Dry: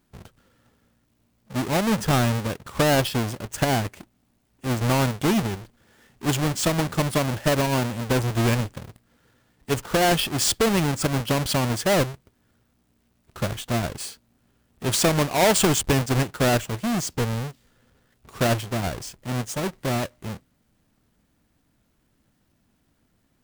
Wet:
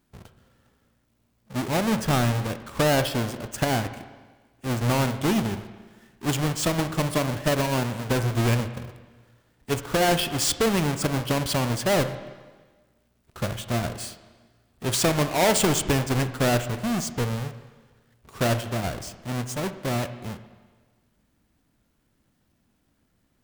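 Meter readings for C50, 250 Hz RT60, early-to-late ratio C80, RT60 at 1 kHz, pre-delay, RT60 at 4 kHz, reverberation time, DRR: 11.5 dB, 1.4 s, 13.5 dB, 1.4 s, 25 ms, 1.4 s, 1.4 s, 10.0 dB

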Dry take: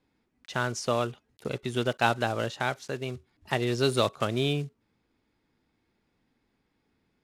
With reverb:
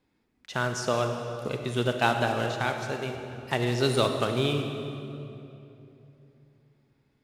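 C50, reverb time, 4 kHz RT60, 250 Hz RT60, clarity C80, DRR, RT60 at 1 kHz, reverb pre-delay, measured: 5.0 dB, 2.9 s, 2.1 s, 3.5 s, 6.0 dB, 4.5 dB, 2.6 s, 33 ms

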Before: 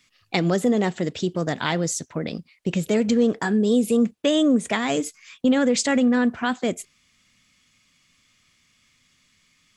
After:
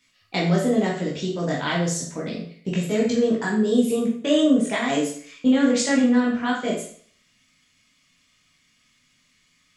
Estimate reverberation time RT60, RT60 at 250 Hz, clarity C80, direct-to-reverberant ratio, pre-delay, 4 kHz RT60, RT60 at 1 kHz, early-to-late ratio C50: 0.50 s, 0.50 s, 8.5 dB, -4.5 dB, 14 ms, 0.50 s, 0.50 s, 4.0 dB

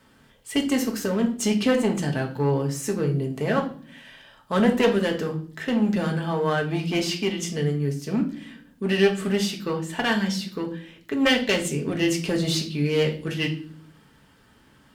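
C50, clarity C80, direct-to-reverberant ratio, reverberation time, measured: 11.5 dB, 16.5 dB, 1.5 dB, 0.50 s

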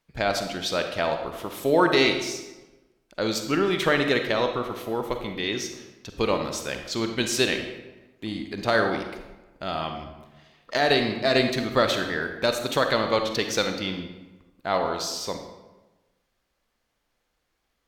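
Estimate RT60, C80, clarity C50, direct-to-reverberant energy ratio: 1.1 s, 8.5 dB, 6.5 dB, 5.5 dB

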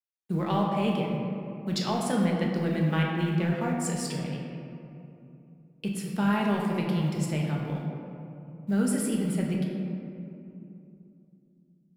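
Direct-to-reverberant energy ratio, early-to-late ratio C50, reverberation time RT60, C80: -2.0 dB, 1.0 dB, 2.8 s, 2.5 dB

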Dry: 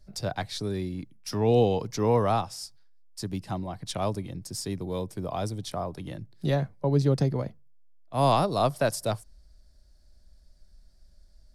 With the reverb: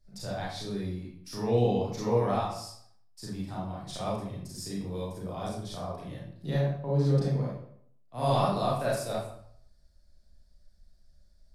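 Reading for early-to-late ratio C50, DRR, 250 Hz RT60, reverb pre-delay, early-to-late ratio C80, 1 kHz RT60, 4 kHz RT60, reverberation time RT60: 0.0 dB, -7.0 dB, 0.65 s, 30 ms, 4.5 dB, 0.65 s, 0.50 s, 0.65 s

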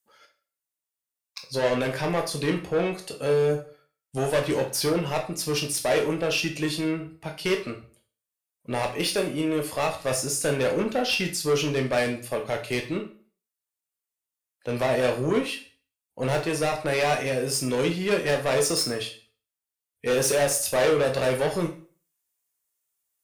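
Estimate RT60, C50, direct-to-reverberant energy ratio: 0.40 s, 10.0 dB, 3.0 dB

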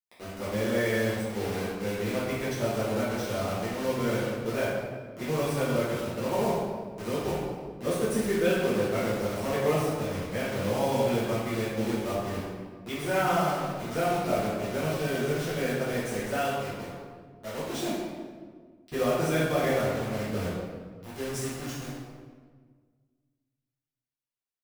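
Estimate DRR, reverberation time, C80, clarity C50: -11.0 dB, 1.6 s, 1.0 dB, -1.0 dB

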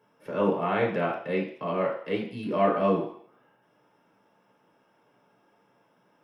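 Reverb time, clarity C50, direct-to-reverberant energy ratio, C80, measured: 0.60 s, 5.0 dB, -3.5 dB, 9.0 dB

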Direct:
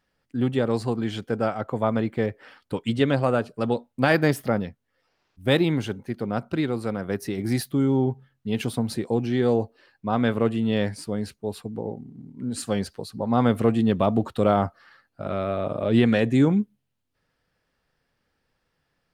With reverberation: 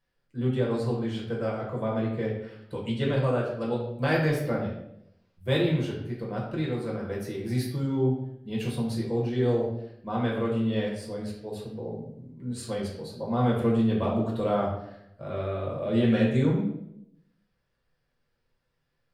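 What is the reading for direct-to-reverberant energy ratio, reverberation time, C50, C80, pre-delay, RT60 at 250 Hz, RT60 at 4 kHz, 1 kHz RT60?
-3.5 dB, 0.75 s, 4.0 dB, 7.0 dB, 5 ms, 0.90 s, 0.60 s, 0.65 s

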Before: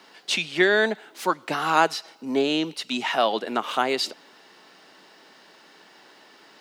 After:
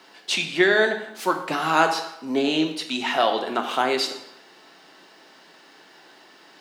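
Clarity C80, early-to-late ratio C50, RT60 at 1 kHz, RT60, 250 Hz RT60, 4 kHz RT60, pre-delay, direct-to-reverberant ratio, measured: 11.0 dB, 8.5 dB, 0.85 s, 0.80 s, 0.70 s, 0.70 s, 3 ms, 4.5 dB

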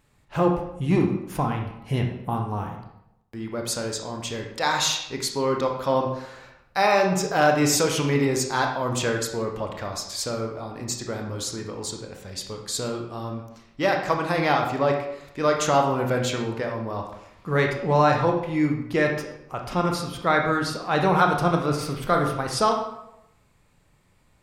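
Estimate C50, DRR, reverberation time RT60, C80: 5.0 dB, 2.0 dB, 0.80 s, 8.0 dB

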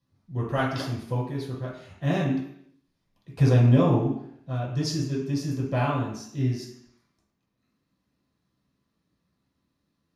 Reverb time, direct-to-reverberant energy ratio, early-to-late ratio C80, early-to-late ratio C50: 0.70 s, -7.0 dB, 7.0 dB, 4.0 dB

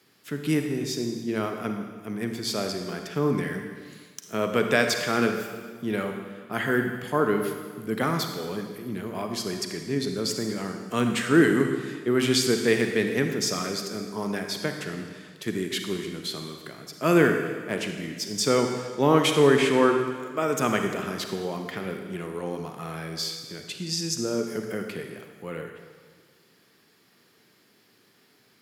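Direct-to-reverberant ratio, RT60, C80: 4.5 dB, 1.6 s, 7.0 dB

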